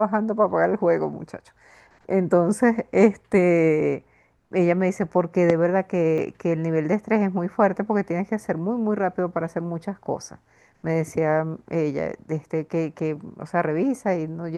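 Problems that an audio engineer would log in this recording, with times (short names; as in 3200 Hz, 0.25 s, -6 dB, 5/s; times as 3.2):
6.18 gap 2.8 ms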